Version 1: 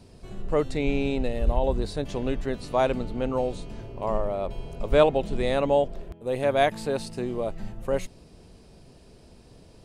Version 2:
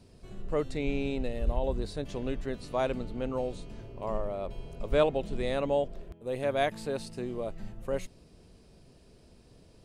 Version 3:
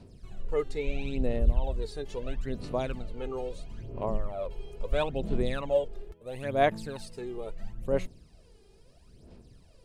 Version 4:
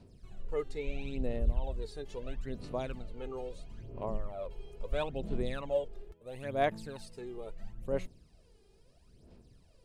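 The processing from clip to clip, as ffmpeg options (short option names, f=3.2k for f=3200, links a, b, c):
-af "equalizer=f=840:t=o:w=0.53:g=-3,volume=-5.5dB"
-af "aphaser=in_gain=1:out_gain=1:delay=2.5:decay=0.68:speed=0.75:type=sinusoidal,volume=-4dB"
-af "asoftclip=type=hard:threshold=-13.5dB,volume=-5.5dB"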